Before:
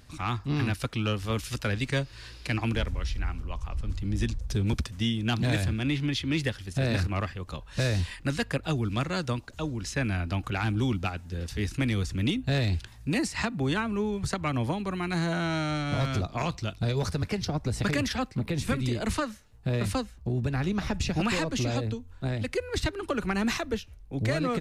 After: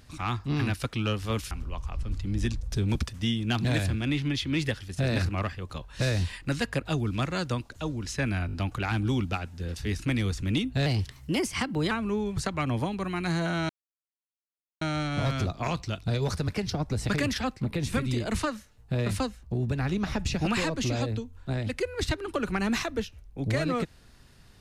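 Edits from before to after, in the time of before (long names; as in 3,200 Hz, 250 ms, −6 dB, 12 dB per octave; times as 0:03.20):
0:01.51–0:03.29: remove
0:10.25: stutter 0.02 s, 4 plays
0:12.58–0:13.78: play speed 114%
0:15.56: splice in silence 1.12 s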